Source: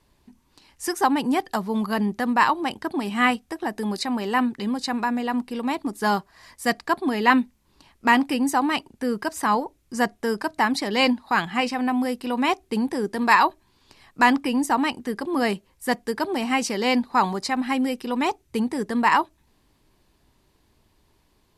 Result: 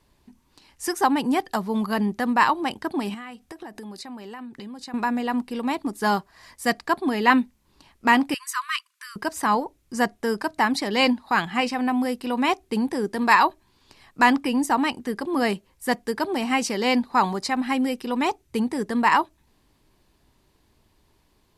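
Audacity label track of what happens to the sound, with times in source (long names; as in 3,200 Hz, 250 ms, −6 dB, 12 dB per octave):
3.140000	4.940000	downward compressor 16 to 1, threshold −34 dBFS
8.340000	9.160000	linear-phase brick-wall high-pass 1,000 Hz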